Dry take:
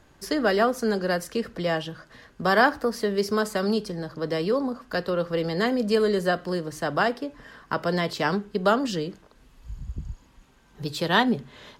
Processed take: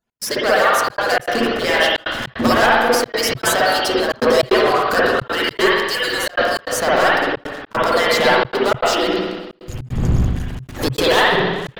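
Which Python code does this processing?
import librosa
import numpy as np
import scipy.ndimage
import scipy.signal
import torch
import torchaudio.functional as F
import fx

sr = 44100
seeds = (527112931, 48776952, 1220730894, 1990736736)

y = fx.hpss_only(x, sr, part='percussive')
y = fx.recorder_agc(y, sr, target_db=-14.0, rise_db_per_s=12.0, max_gain_db=30)
y = fx.high_shelf(y, sr, hz=5200.0, db=4.5)
y = fx.hum_notches(y, sr, base_hz=50, count=7)
y = fx.leveller(y, sr, passes=5)
y = fx.echo_heads(y, sr, ms=96, heads='first and second', feedback_pct=73, wet_db=-21.0, at=(9.01, 11.32))
y = fx.rev_spring(y, sr, rt60_s=1.3, pass_ms=(52, 60), chirp_ms=80, drr_db=-7.0)
y = fx.step_gate(y, sr, bpm=153, pattern='x.xxxxxxx.x', floor_db=-60.0, edge_ms=4.5)
y = fx.dynamic_eq(y, sr, hz=130.0, q=6.9, threshold_db=-34.0, ratio=4.0, max_db=-4)
y = fx.sustainer(y, sr, db_per_s=49.0)
y = F.gain(torch.from_numpy(y), -10.0).numpy()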